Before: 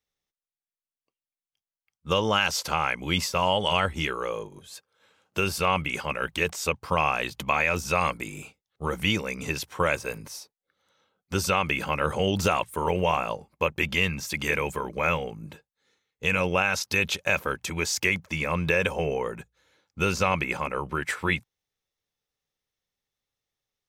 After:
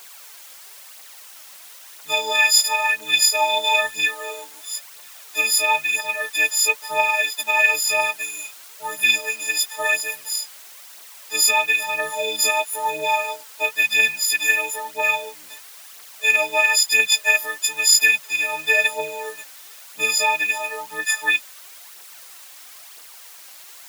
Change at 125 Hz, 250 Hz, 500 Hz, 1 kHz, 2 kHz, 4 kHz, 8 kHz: below −20 dB, −14.0 dB, −0.5 dB, +3.0 dB, +9.5 dB, +9.5 dB, +15.0 dB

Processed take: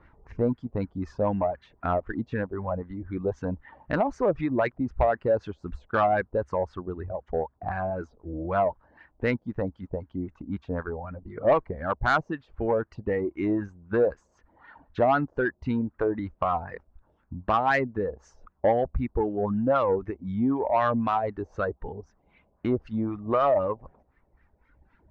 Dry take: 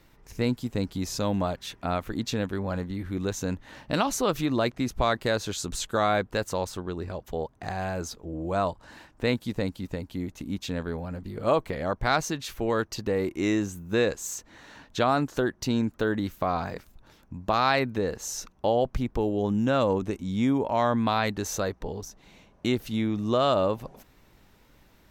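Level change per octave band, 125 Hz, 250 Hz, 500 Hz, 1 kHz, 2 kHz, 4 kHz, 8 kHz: −2.0 dB, −1.5 dB, +1.5 dB, +1.5 dB, 0.0 dB, −14.0 dB, below −25 dB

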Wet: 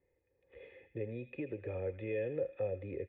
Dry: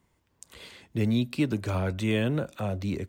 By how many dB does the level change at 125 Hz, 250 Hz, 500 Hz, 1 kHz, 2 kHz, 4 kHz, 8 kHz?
−16.0 dB, −17.5 dB, −3.5 dB, −17.0 dB, −13.5 dB, below −25 dB, below −30 dB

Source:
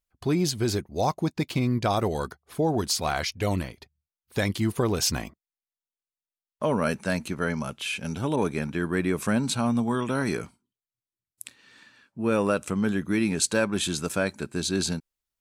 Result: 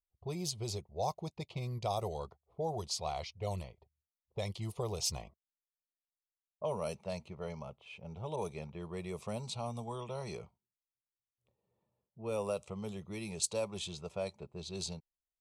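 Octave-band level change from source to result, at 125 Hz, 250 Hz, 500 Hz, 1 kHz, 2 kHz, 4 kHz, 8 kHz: −12.0, −19.0, −10.5, −10.5, −20.5, −11.0, −10.5 decibels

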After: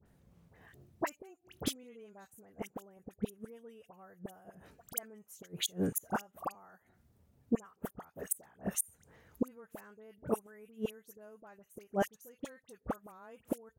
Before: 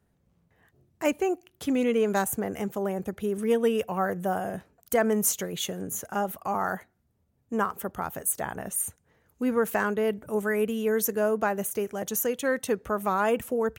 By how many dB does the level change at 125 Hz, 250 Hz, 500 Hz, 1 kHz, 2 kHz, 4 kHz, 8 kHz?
−8.5, −11.5, −16.0, −14.5, −16.5, −5.5, −10.5 decibels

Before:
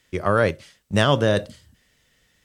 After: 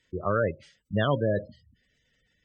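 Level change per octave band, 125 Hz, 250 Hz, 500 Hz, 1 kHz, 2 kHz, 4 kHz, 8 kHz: −6.0 dB, −6.5 dB, −6.0 dB, −7.5 dB, −9.0 dB, −13.5 dB, below −25 dB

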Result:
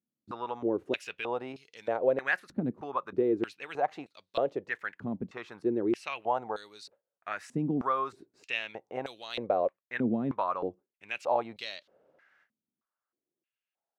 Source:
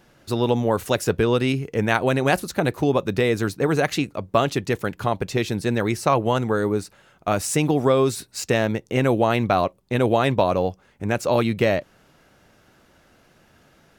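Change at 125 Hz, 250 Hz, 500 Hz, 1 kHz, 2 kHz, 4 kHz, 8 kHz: −19.5 dB, −10.5 dB, −11.0 dB, −9.0 dB, −9.0 dB, −12.5 dB, below −20 dB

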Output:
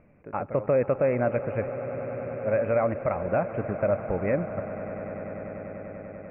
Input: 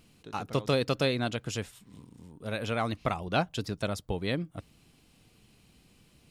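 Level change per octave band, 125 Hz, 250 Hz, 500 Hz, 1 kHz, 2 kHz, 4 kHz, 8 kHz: +1.5 dB, +2.0 dB, +8.5 dB, +2.5 dB, 0.0 dB, below −30 dB, below −35 dB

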